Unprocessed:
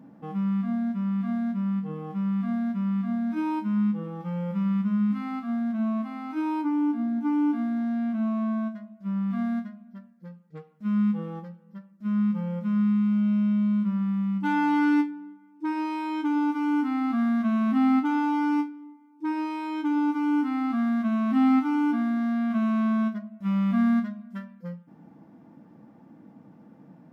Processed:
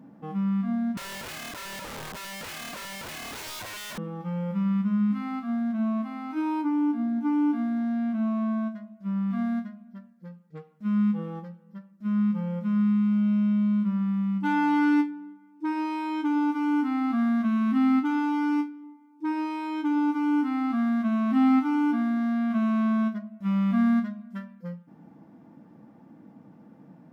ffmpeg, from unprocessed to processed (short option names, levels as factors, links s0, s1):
-filter_complex "[0:a]asettb=1/sr,asplit=3[s0][s1][s2];[s0]atrim=end=0.974[s3];[s1]atrim=start=0.97:end=3.98,asetpts=PTS-STARTPTS,afade=t=in:d=0.004:c=qsin,afade=t=out:st=3.006:d=0.004:c=qsin,aeval=exprs='(mod(47.3*val(0)+1,2)-1)/47.3':c=same[s4];[s2]atrim=start=3.976[s5];[s3][s4]acrossfade=d=0.004:c1=hsin:c2=qsin[s6];[s6][s5]acrossfade=d=0.004:c1=qsin:c2=hsin,asettb=1/sr,asplit=3[s7][s8][s9];[s7]atrim=end=17.454[s10];[s8]atrim=start=17.45:end=18.84,asetpts=PTS-STARTPTS,afade=t=in:d=0.004:c=qsin,afade=t=out:st=1.386:d=0.004:c=qsin,equalizer=f=670:t=o:w=0.6:g=-9[s11];[s9]atrim=start=18.836[s12];[s10][s11]acrossfade=d=0.004:c1=hsin:c2=qsin[s13];[s13][s12]acrossfade=d=0.004:c1=qsin:c2=hsin"